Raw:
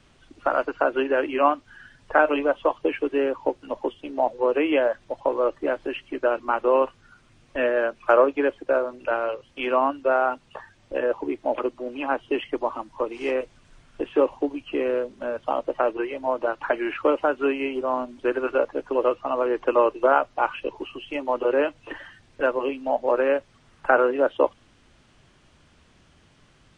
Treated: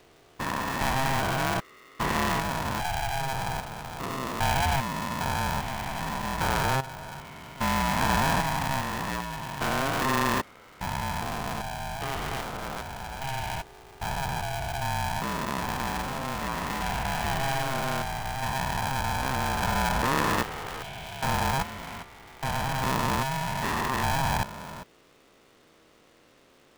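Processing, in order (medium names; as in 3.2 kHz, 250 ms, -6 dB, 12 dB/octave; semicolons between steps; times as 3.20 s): spectrogram pixelated in time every 400 ms; polarity switched at an audio rate 400 Hz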